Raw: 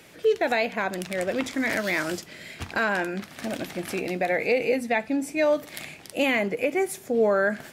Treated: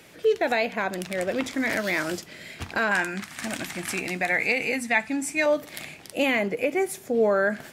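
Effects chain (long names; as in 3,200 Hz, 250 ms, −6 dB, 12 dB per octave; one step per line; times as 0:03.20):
0:02.91–0:05.46: graphic EQ with 10 bands 500 Hz −9 dB, 1,000 Hz +4 dB, 2,000 Hz +5 dB, 8,000 Hz +9 dB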